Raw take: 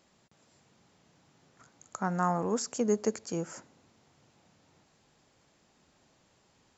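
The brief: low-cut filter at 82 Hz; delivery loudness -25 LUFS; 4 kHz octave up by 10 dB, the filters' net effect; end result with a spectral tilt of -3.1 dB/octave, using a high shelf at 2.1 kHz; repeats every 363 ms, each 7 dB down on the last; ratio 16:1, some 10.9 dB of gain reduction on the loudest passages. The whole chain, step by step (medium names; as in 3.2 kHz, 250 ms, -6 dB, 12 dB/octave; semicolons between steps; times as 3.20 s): high-pass 82 Hz; treble shelf 2.1 kHz +8.5 dB; peaking EQ 4 kHz +4 dB; compression 16:1, threshold -32 dBFS; feedback delay 363 ms, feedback 45%, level -7 dB; trim +13 dB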